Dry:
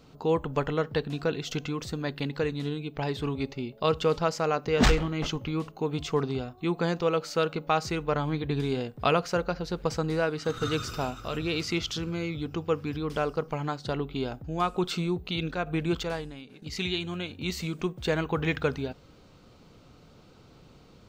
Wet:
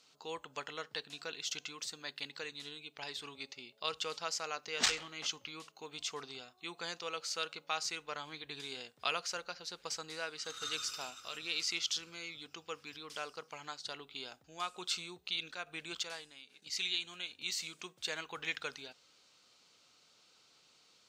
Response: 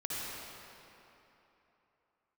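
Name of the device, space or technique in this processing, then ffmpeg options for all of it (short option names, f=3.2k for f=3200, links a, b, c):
piezo pickup straight into a mixer: -af "lowpass=7.7k,aderivative,volume=4.5dB"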